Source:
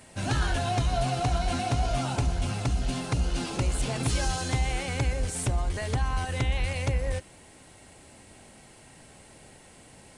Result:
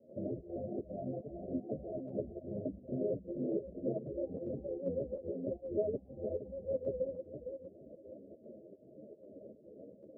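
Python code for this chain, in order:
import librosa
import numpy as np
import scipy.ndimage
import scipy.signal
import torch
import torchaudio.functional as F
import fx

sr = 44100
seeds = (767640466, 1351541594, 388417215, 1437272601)

p1 = fx.over_compress(x, sr, threshold_db=-33.0, ratio=-0.5)
p2 = x + (p1 * 10.0 ** (-3.0 / 20.0))
p3 = scipy.signal.sosfilt(scipy.signal.cheby1(8, 1.0, 630.0, 'lowpass', fs=sr, output='sos'), p2)
p4 = p3 + fx.echo_feedback(p3, sr, ms=464, feedback_pct=30, wet_db=-7.5, dry=0)
p5 = fx.dereverb_blind(p4, sr, rt60_s=0.73)
p6 = scipy.signal.sosfilt(scipy.signal.butter(2, 310.0, 'highpass', fs=sr, output='sos'), p5)
p7 = fx.volume_shaper(p6, sr, bpm=151, per_beat=1, depth_db=-11, release_ms=90.0, shape='slow start')
p8 = fx.ensemble(p7, sr)
y = p8 * 10.0 ** (3.5 / 20.0)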